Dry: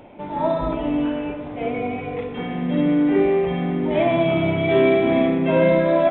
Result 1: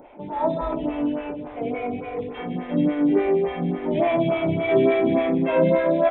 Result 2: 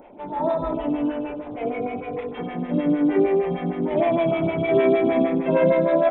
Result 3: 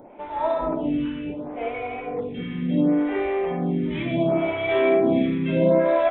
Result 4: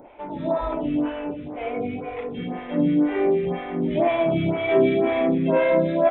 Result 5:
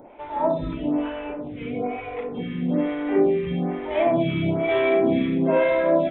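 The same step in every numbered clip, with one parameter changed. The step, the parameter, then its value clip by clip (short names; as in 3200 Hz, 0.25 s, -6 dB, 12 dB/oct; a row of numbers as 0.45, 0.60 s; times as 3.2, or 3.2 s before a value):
photocell phaser, rate: 3.5, 6.5, 0.7, 2, 1.1 Hz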